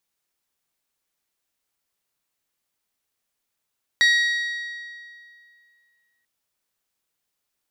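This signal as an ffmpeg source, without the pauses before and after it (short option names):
-f lavfi -i "aevalsrc='0.211*pow(10,-3*t/2.3)*sin(2*PI*1900*t)+0.106*pow(10,-3*t/1.868)*sin(2*PI*3800*t)+0.0531*pow(10,-3*t/1.769)*sin(2*PI*4560*t)+0.0266*pow(10,-3*t/1.654)*sin(2*PI*5700*t)+0.0133*pow(10,-3*t/1.517)*sin(2*PI*7600*t)+0.00668*pow(10,-3*t/1.419)*sin(2*PI*9500*t)+0.00335*pow(10,-3*t/1.344)*sin(2*PI*11400*t)':d=2.24:s=44100"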